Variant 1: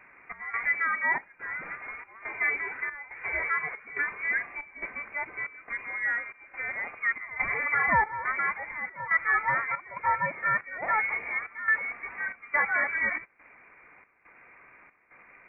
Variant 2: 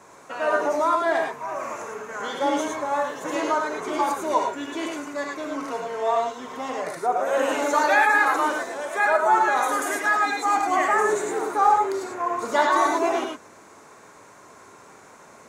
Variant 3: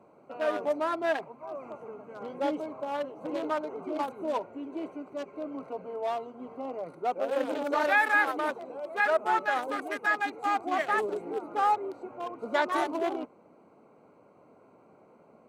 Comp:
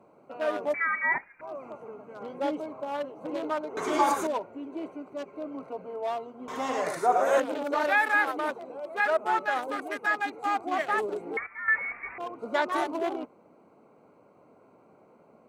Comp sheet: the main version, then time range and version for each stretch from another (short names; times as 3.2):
3
0.74–1.41 from 1
3.77–4.27 from 2
6.48–7.4 from 2
11.37–12.18 from 1